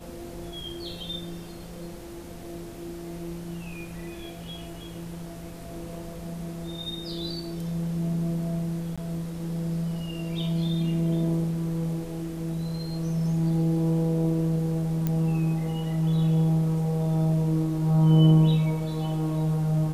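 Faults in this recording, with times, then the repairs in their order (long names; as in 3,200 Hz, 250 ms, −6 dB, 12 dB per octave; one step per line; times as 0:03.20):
0:08.96–0:08.98: drop-out 16 ms
0:15.07: click −14 dBFS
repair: click removal
repair the gap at 0:08.96, 16 ms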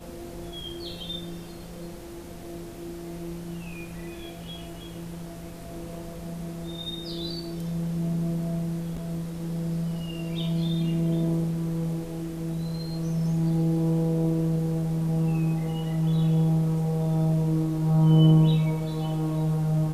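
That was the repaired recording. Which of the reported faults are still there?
none of them is left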